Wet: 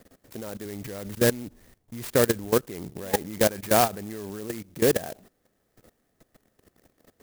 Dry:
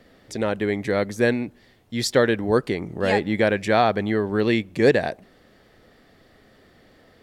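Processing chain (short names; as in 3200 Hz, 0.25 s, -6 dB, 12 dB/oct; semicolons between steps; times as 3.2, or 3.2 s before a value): 0.65–2.49 low shelf 78 Hz +11.5 dB; level quantiser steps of 18 dB; clock jitter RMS 0.093 ms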